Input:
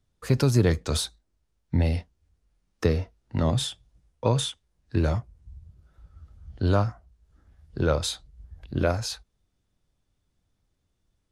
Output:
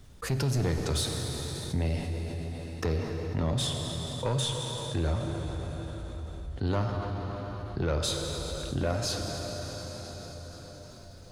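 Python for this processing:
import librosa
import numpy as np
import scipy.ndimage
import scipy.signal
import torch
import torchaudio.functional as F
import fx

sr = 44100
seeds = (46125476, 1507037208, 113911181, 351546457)

y = 10.0 ** (-18.0 / 20.0) * np.tanh(x / 10.0 ** (-18.0 / 20.0))
y = fx.rev_plate(y, sr, seeds[0], rt60_s=3.7, hf_ratio=0.95, predelay_ms=0, drr_db=5.0)
y = fx.env_flatten(y, sr, amount_pct=50)
y = y * librosa.db_to_amplitude(-5.5)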